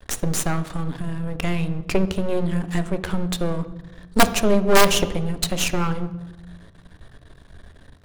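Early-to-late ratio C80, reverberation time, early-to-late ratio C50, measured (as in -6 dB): 16.0 dB, 1.1 s, 13.5 dB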